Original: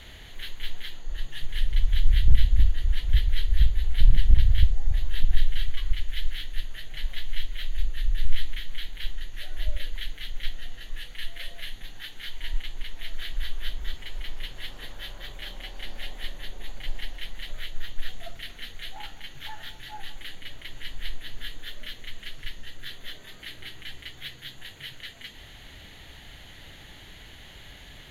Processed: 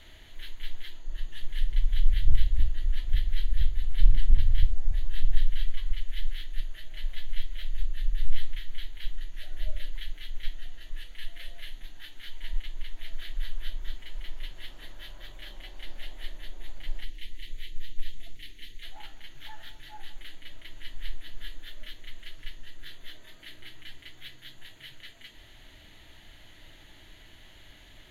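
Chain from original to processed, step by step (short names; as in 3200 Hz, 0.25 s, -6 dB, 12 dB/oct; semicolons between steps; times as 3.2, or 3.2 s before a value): 17.04–18.83 band shelf 930 Hz -14.5 dB; on a send: reverb RT60 0.25 s, pre-delay 3 ms, DRR 9.5 dB; on the sum: gain -7 dB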